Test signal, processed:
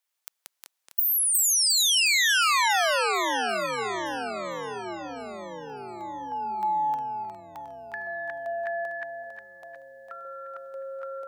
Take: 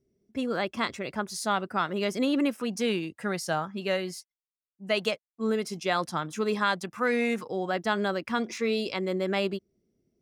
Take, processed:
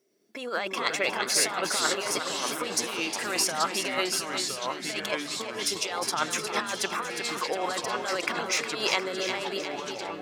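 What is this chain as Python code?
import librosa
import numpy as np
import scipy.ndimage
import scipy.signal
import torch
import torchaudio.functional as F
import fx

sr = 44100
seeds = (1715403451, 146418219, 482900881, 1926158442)

y = fx.over_compress(x, sr, threshold_db=-32.0, ratio=-0.5)
y = scipy.signal.sosfilt(scipy.signal.butter(2, 640.0, 'highpass', fs=sr, output='sos'), y)
y = fx.echo_feedback(y, sr, ms=359, feedback_pct=55, wet_db=-7.5)
y = fx.echo_pitch(y, sr, ms=109, semitones=-4, count=3, db_per_echo=-6.0)
y = 10.0 ** (-15.0 / 20.0) * np.tanh(y / 10.0 ** (-15.0 / 20.0))
y = y * librosa.db_to_amplitude(7.5)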